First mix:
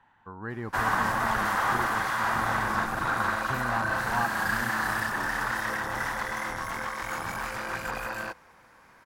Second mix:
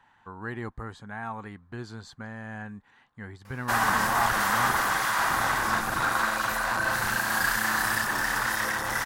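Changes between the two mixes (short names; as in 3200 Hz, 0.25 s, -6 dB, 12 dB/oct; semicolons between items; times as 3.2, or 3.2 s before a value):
background: entry +2.95 s; master: add high shelf 3000 Hz +10 dB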